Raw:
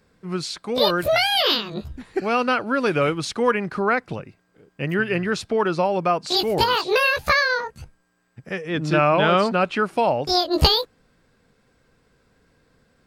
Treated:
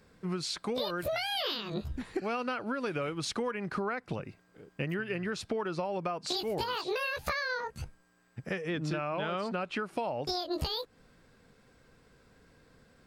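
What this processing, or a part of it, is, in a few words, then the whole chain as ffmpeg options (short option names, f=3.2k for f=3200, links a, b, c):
serial compression, leveller first: -af "acompressor=threshold=-21dB:ratio=2,acompressor=threshold=-31dB:ratio=6"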